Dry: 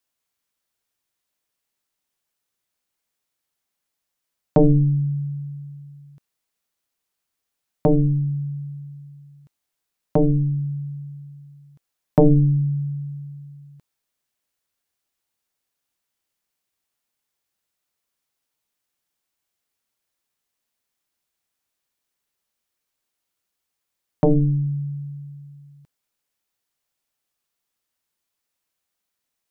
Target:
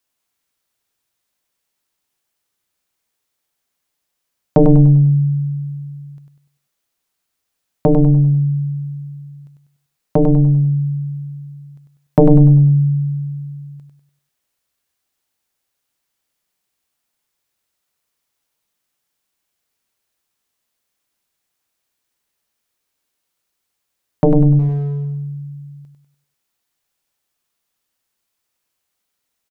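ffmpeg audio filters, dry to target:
-filter_complex "[0:a]asettb=1/sr,asplit=3[a][b][c];[a]atrim=end=24.594[d];[b]atrim=start=24.59:end=25.05,asetpts=PTS-STARTPTS,afade=t=in:d=0.004:c=qsin,afade=t=out:st=0.456:d=0.004:c=qsin,asoftclip=type=hard:threshold=-29.5dB[e];[c]atrim=start=25.046[f];[d][e]acrossfade=d=0.004:c1=hsin:c2=qsin[g];[g][f]acrossfade=d=0.004:c1=qsin:c2=hsin,aecho=1:1:98|196|294|392|490:0.531|0.207|0.0807|0.0315|0.0123,volume=4dB"

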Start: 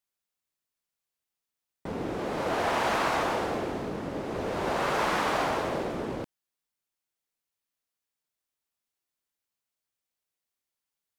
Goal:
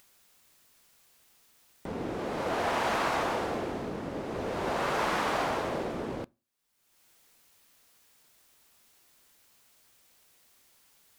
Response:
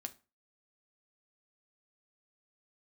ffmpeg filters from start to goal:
-filter_complex "[0:a]acompressor=mode=upward:threshold=-40dB:ratio=2.5,asplit=2[a][b];[1:a]atrim=start_sample=2205[c];[b][c]afir=irnorm=-1:irlink=0,volume=-10.5dB[d];[a][d]amix=inputs=2:normalize=0,volume=-3.5dB"

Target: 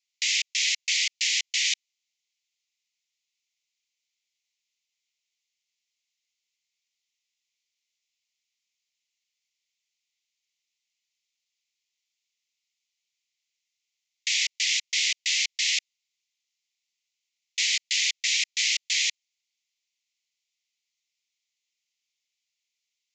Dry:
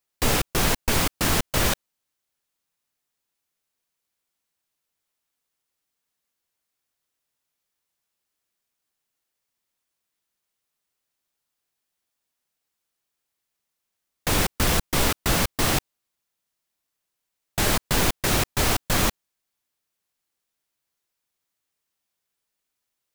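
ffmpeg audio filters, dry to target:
-af "asuperpass=centerf=3900:order=20:qfactor=0.74,volume=4dB"

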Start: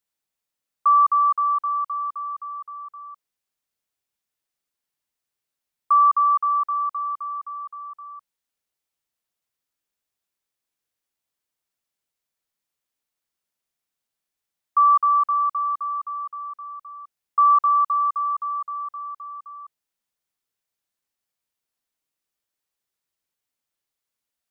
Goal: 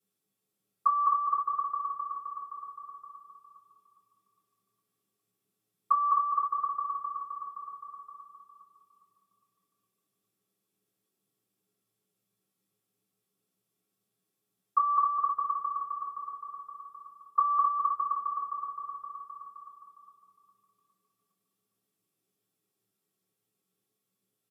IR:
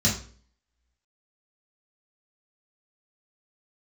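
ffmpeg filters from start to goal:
-filter_complex "[0:a]asplit=2[a][b];[b]adelay=409,lowpass=f=1.1k:p=1,volume=-3.5dB,asplit=2[c][d];[d]adelay=409,lowpass=f=1.1k:p=1,volume=0.47,asplit=2[e][f];[f]adelay=409,lowpass=f=1.1k:p=1,volume=0.47,asplit=2[g][h];[h]adelay=409,lowpass=f=1.1k:p=1,volume=0.47,asplit=2[i][j];[j]adelay=409,lowpass=f=1.1k:p=1,volume=0.47,asplit=2[k][l];[l]adelay=409,lowpass=f=1.1k:p=1,volume=0.47[m];[a][c][e][g][i][k][m]amix=inputs=7:normalize=0[n];[1:a]atrim=start_sample=2205,asetrate=83790,aresample=44100[o];[n][o]afir=irnorm=-1:irlink=0,volume=-7dB"

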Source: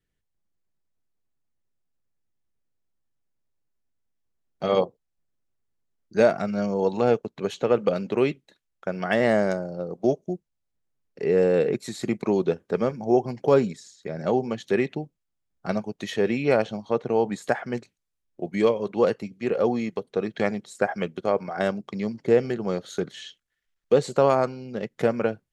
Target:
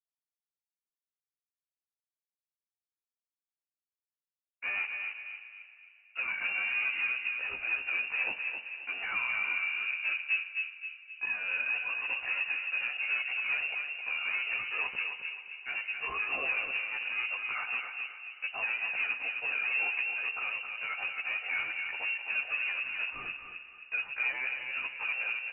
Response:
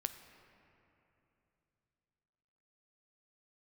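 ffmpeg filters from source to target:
-filter_complex "[0:a]agate=range=-30dB:threshold=-40dB:ratio=16:detection=peak,highpass=f=530:p=1,acompressor=threshold=-27dB:ratio=3,alimiter=limit=-22dB:level=0:latency=1:release=26,asoftclip=type=tanh:threshold=-35.5dB,afreqshift=240,asplit=2[a][b];[b]adelay=264,lowpass=f=1.6k:p=1,volume=-3.5dB,asplit=2[c][d];[d]adelay=264,lowpass=f=1.6k:p=1,volume=0.51,asplit=2[e][f];[f]adelay=264,lowpass=f=1.6k:p=1,volume=0.51,asplit=2[g][h];[h]adelay=264,lowpass=f=1.6k:p=1,volume=0.51,asplit=2[i][j];[j]adelay=264,lowpass=f=1.6k:p=1,volume=0.51,asplit=2[k][l];[l]adelay=264,lowpass=f=1.6k:p=1,volume=0.51,asplit=2[m][n];[n]adelay=264,lowpass=f=1.6k:p=1,volume=0.51[o];[a][c][e][g][i][k][m][o]amix=inputs=8:normalize=0,asplit=2[p][q];[1:a]atrim=start_sample=2205,adelay=15[r];[q][r]afir=irnorm=-1:irlink=0,volume=5dB[s];[p][s]amix=inputs=2:normalize=0,lowpass=f=2.7k:t=q:w=0.5098,lowpass=f=2.7k:t=q:w=0.6013,lowpass=f=2.7k:t=q:w=0.9,lowpass=f=2.7k:t=q:w=2.563,afreqshift=-3200"

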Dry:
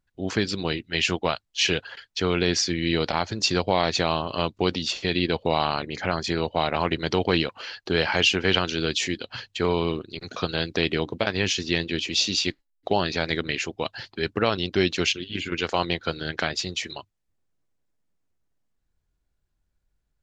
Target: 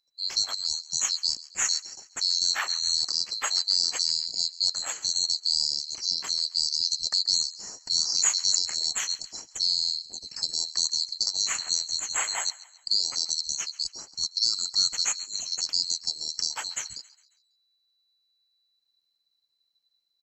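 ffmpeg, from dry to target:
-filter_complex "[0:a]afftfilt=real='real(if(lt(b,736),b+184*(1-2*mod(floor(b/184),2)),b),0)':imag='imag(if(lt(b,736),b+184*(1-2*mod(floor(b/184),2)),b),0)':win_size=2048:overlap=0.75,acrossover=split=950[a][b];[a]acompressor=threshold=-52dB:ratio=5[c];[b]aecho=1:1:136|272|408|544:0.112|0.0505|0.0227|0.0102[d];[c][d]amix=inputs=2:normalize=0,volume=-2.5dB"

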